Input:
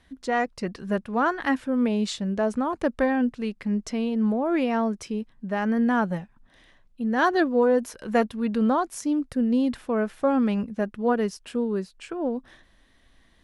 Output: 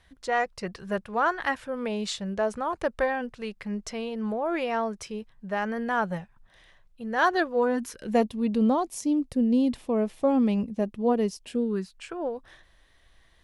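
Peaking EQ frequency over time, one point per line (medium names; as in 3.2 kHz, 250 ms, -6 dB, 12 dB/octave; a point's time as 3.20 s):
peaking EQ -14 dB 0.63 oct
7.55 s 260 Hz
8.17 s 1.5 kHz
11.43 s 1.5 kHz
12.14 s 240 Hz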